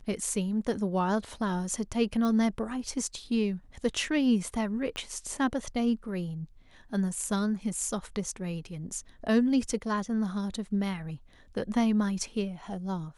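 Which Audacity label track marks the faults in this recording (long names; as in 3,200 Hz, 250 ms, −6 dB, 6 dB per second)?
2.250000	2.250000	click −21 dBFS
4.960000	4.960000	click −21 dBFS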